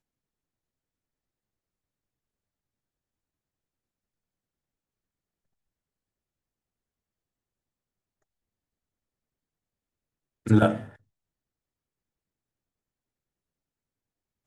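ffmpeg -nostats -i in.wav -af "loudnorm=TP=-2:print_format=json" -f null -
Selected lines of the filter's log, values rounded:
"input_i" : "-22.7",
"input_tp" : "-7.5",
"input_lra" : "0.0",
"input_thresh" : "-35.2",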